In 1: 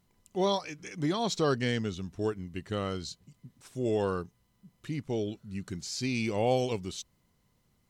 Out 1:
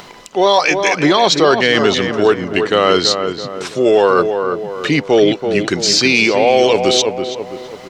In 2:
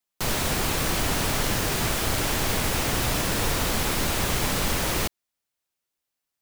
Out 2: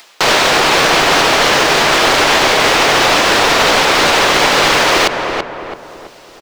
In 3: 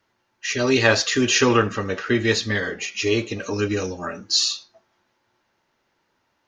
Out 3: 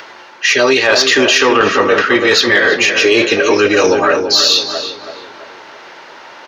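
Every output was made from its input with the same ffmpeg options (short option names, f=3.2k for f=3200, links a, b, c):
-filter_complex "[0:a]acrossover=split=350 5900:gain=0.0708 1 0.1[a][b][c];[a][b][c]amix=inputs=3:normalize=0,areverse,acompressor=threshold=-37dB:ratio=5,areverse,asoftclip=type=tanh:threshold=-26dB,equalizer=f=150:w=3.2:g=6,acompressor=mode=upward:threshold=-57dB:ratio=2.5,asplit=2[d][e];[e]adelay=331,lowpass=f=1.7k:p=1,volume=-6.5dB,asplit=2[f][g];[g]adelay=331,lowpass=f=1.7k:p=1,volume=0.47,asplit=2[h][i];[i]adelay=331,lowpass=f=1.7k:p=1,volume=0.47,asplit=2[j][k];[k]adelay=331,lowpass=f=1.7k:p=1,volume=0.47,asplit=2[l][m];[m]adelay=331,lowpass=f=1.7k:p=1,volume=0.47,asplit=2[n][o];[o]adelay=331,lowpass=f=1.7k:p=1,volume=0.47[p];[f][h][j][l][n][p]amix=inputs=6:normalize=0[q];[d][q]amix=inputs=2:normalize=0,alimiter=level_in=30.5dB:limit=-1dB:release=50:level=0:latency=1,volume=-1dB"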